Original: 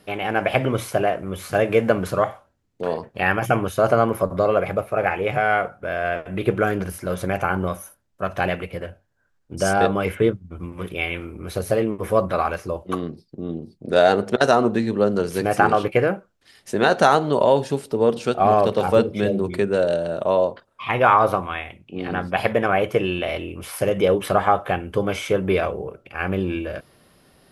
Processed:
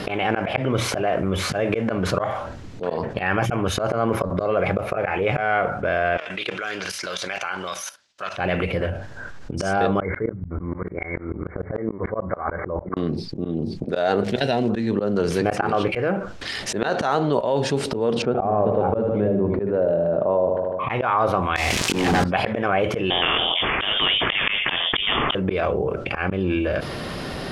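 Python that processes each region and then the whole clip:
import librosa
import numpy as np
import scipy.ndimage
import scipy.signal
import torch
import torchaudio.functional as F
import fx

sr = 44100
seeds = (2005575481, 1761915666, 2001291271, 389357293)

y = fx.chain(x, sr, fx.level_steps(step_db=16),
    fx.bandpass_q(hz=4800.0, q=1.2), at=(6.17, 8.37))
y = fx.chain(y, sr, fx.cheby1_lowpass(hz=2200.0, order=10),
    fx.tremolo_decay(direction='swelling', hz=6.8, depth_db=34), at=(10.0, 12.97))
y = fx.peak_eq(y, sr, hz=430.0, db=-6.5, octaves=1.8, at=(14.23, 14.68), fade=0.02)
y = fx.fixed_phaser(y, sr, hz=2900.0, stages=4, at=(14.23, 14.68), fade=0.02)
y = fx.dmg_crackle(y, sr, seeds[0], per_s=540.0, level_db=-38.0, at=(14.23, 14.68), fade=0.02)
y = fx.chain(y, sr, fx.lowpass(hz=1000.0, slope=12),
    fx.echo_feedback(ms=76, feedback_pct=54, wet_db=-10.0), at=(18.22, 20.9))
y = fx.chain(y, sr, fx.crossing_spikes(level_db=-19.5),
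    fx.notch(hz=1400.0, q=7.9),
    fx.leveller(passes=5), at=(21.56, 22.24))
y = fx.chain(y, sr, fx.freq_invert(carrier_hz=3400),
    fx.spectral_comp(ratio=2.0), at=(23.1, 25.35))
y = scipy.signal.sosfilt(scipy.signal.butter(2, 5700.0, 'lowpass', fs=sr, output='sos'), y)
y = fx.auto_swell(y, sr, attack_ms=215.0)
y = fx.env_flatten(y, sr, amount_pct=70)
y = y * librosa.db_to_amplitude(-5.0)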